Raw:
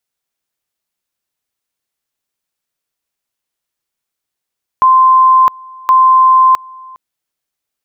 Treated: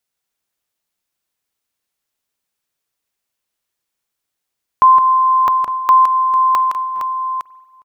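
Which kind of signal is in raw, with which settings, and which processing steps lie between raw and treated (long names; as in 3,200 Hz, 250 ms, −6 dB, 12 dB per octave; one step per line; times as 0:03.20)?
tone at two levels in turn 1,040 Hz −4 dBFS, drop 26 dB, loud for 0.66 s, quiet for 0.41 s, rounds 2
multi-tap delay 164/859 ms −6.5/−13 dB
spring reverb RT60 1.3 s, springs 45 ms, chirp 45 ms, DRR 19 dB
buffer that repeats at 0:06.96, samples 256, times 8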